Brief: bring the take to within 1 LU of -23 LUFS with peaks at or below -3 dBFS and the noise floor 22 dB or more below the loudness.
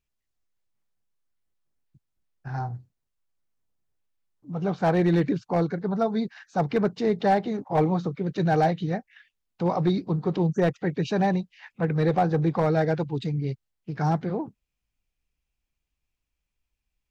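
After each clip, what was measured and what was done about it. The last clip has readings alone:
clipped samples 0.4%; clipping level -14.5 dBFS; loudness -25.5 LUFS; peak level -14.5 dBFS; loudness target -23.0 LUFS
-> clip repair -14.5 dBFS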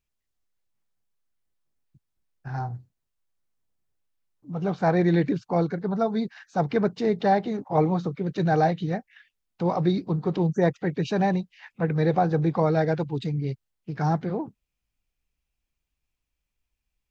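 clipped samples 0.0%; loudness -25.5 LUFS; peak level -9.0 dBFS; loudness target -23.0 LUFS
-> trim +2.5 dB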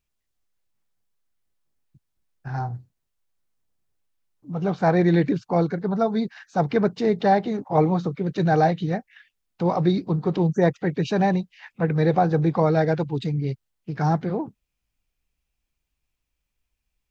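loudness -23.0 LUFS; peak level -6.5 dBFS; noise floor -80 dBFS

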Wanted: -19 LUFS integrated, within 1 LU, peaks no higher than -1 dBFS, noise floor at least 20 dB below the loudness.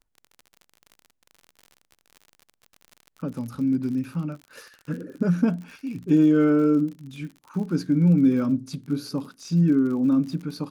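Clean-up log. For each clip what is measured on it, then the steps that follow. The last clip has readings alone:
tick rate 50 per s; loudness -23.5 LUFS; peak level -9.5 dBFS; loudness target -19.0 LUFS
-> de-click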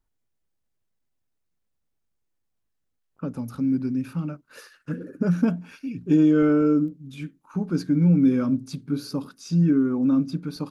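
tick rate 0.19 per s; loudness -23.0 LUFS; peak level -9.5 dBFS; loudness target -19.0 LUFS
-> trim +4 dB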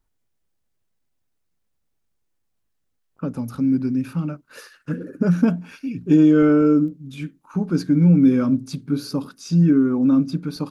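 loudness -19.0 LUFS; peak level -5.5 dBFS; noise floor -72 dBFS

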